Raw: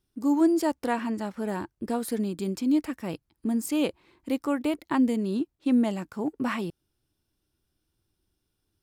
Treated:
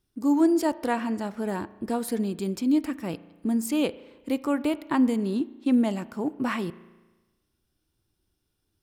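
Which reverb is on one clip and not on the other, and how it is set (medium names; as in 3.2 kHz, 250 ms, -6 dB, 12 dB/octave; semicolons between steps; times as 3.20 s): spring tank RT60 1.2 s, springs 35 ms, chirp 50 ms, DRR 16.5 dB; trim +1 dB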